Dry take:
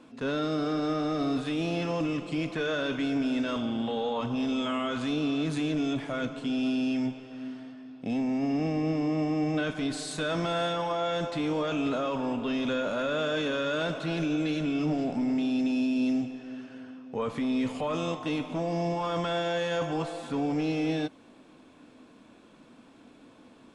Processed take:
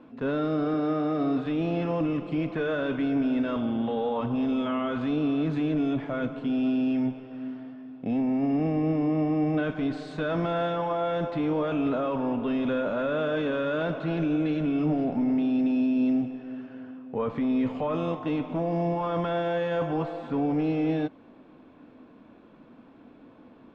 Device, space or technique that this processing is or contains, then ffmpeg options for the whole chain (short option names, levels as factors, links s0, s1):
phone in a pocket: -filter_complex "[0:a]lowpass=3500,highshelf=f=2300:g=-11,asettb=1/sr,asplit=3[s0][s1][s2];[s0]atrim=end=0.744[s3];[s1]atrim=start=0.74:end=1.46,asetpts=PTS-STARTPTS,afade=t=in:d=0.004:c=qsin,afade=t=out:st=0.716:d=0.004:c=qsin,highpass=120[s4];[s2]atrim=start=1.456[s5];[s3][s4]acrossfade=d=0.004:c1=hsin:c2=qsin[s6];[s6][s5]acrossfade=d=0.004:c1=qsin:c2=hsin,volume=1.41"